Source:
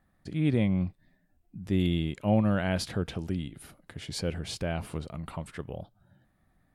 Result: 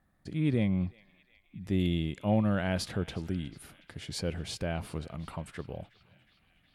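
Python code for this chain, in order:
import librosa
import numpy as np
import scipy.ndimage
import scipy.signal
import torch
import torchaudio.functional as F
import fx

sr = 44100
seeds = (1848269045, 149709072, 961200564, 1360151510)

y = fx.cheby_harmonics(x, sr, harmonics=(5,), levels_db=(-33,), full_scale_db=-12.5)
y = fx.echo_banded(y, sr, ms=364, feedback_pct=82, hz=2600.0, wet_db=-19)
y = y * 10.0 ** (-2.5 / 20.0)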